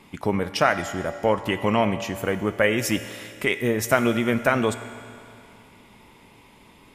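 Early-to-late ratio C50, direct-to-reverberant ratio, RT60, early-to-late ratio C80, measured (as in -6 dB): 11.0 dB, 10.0 dB, 2.5 s, 12.0 dB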